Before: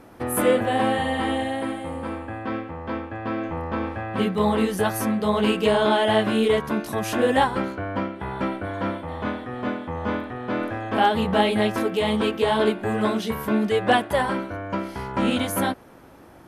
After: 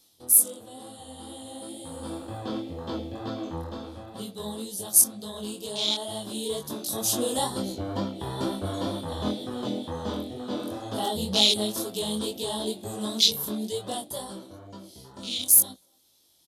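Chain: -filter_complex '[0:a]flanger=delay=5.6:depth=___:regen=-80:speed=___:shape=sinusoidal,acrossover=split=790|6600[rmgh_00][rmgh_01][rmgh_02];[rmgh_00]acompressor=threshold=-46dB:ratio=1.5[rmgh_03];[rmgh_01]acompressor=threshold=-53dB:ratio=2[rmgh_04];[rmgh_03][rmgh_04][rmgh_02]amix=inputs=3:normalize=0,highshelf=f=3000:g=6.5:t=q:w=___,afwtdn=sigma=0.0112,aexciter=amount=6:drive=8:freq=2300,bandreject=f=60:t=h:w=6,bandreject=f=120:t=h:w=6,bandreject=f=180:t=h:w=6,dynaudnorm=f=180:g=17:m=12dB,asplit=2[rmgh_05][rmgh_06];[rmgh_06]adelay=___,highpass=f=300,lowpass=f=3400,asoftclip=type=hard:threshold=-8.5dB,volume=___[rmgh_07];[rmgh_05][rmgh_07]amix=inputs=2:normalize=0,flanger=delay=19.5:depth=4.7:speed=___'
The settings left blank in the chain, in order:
7.3, 0.42, 3, 250, -28dB, 2.1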